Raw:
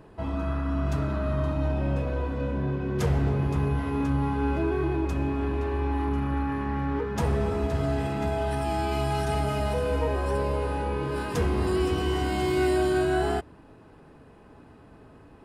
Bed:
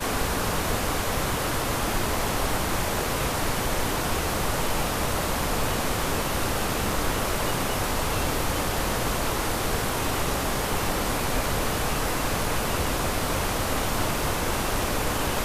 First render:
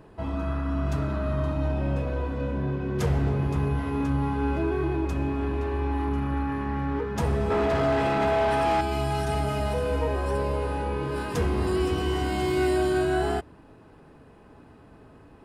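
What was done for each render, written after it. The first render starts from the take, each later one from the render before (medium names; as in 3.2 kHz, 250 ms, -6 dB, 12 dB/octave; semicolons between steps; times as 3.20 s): 7.50–8.81 s: overdrive pedal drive 21 dB, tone 2 kHz, clips at -15 dBFS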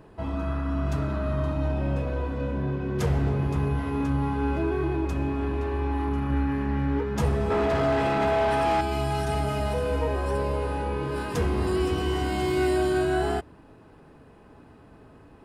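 6.28–7.29 s: doubling 14 ms -6 dB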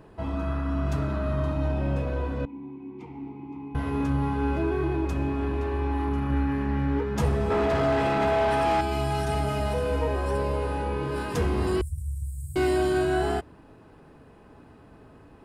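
2.45–3.75 s: vowel filter u; 11.81–12.56 s: Chebyshev band-stop 120–8200 Hz, order 4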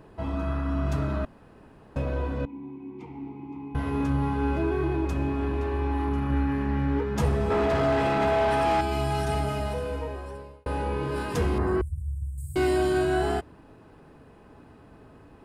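1.25–1.96 s: room tone; 9.32–10.66 s: fade out; 11.58–12.38 s: resonant high shelf 2.3 kHz -12.5 dB, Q 1.5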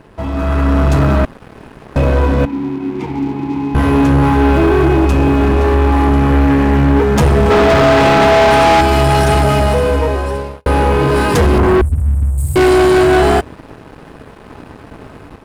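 waveshaping leveller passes 3; level rider gain up to 8.5 dB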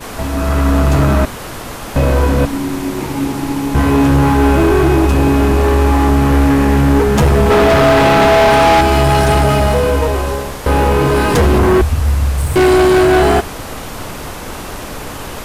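add bed -1 dB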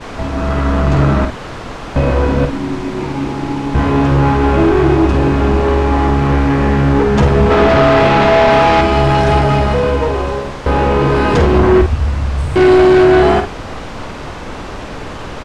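distance through air 120 m; doubling 49 ms -7.5 dB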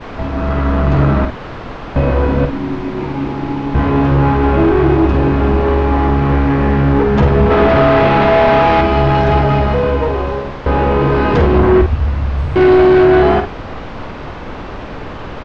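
distance through air 180 m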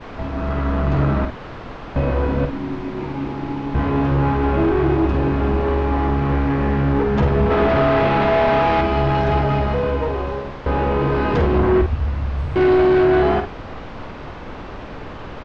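trim -6 dB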